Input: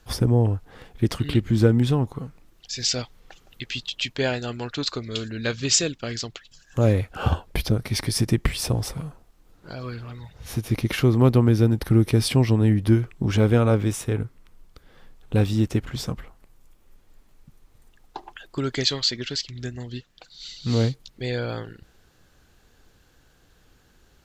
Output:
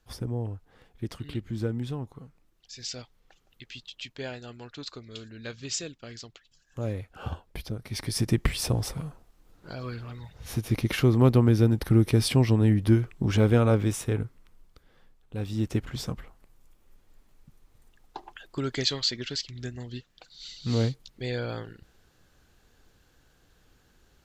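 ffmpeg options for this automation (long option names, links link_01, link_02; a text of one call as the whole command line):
ffmpeg -i in.wav -af "volume=8.5dB,afade=type=in:start_time=7.8:duration=0.58:silence=0.316228,afade=type=out:start_time=14.12:duration=1.23:silence=0.237137,afade=type=in:start_time=15.35:duration=0.41:silence=0.281838" out.wav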